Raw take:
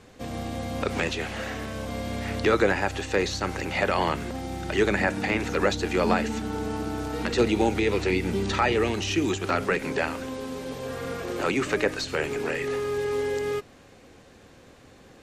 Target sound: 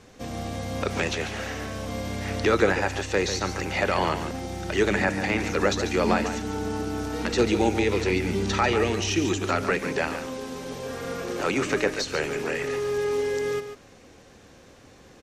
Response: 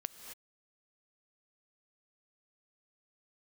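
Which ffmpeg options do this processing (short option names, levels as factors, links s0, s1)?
-filter_complex "[0:a]equalizer=f=5800:w=3.6:g=5.5,asplit=2[s0][s1];[s1]aecho=0:1:143:0.335[s2];[s0][s2]amix=inputs=2:normalize=0"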